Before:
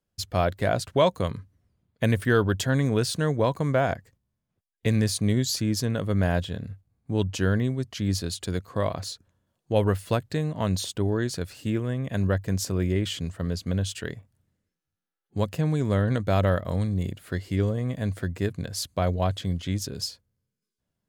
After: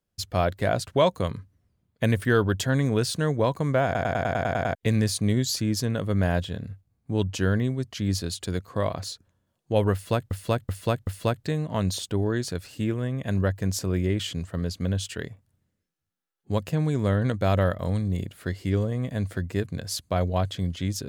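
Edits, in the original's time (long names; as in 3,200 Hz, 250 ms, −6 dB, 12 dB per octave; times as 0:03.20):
0:03.85: stutter in place 0.10 s, 9 plays
0:09.93–0:10.31: repeat, 4 plays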